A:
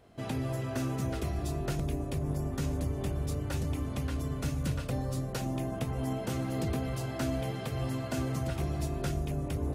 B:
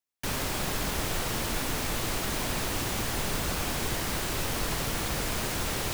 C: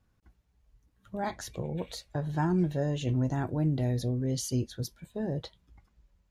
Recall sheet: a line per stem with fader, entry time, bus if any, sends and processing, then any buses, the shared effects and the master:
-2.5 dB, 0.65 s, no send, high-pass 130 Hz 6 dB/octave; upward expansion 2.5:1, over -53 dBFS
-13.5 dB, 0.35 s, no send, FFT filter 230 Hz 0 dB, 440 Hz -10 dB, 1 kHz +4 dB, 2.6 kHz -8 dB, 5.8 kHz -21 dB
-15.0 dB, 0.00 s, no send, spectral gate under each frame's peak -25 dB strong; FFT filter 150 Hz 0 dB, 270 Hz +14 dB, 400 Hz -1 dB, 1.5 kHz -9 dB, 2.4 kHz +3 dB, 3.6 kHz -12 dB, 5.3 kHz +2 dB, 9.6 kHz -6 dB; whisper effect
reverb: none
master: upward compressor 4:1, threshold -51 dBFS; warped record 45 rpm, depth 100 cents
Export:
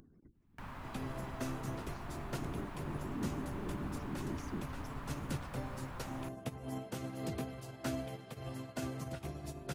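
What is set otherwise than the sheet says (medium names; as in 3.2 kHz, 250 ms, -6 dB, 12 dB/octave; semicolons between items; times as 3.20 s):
stem C -15.0 dB -> -21.5 dB; master: missing warped record 45 rpm, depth 100 cents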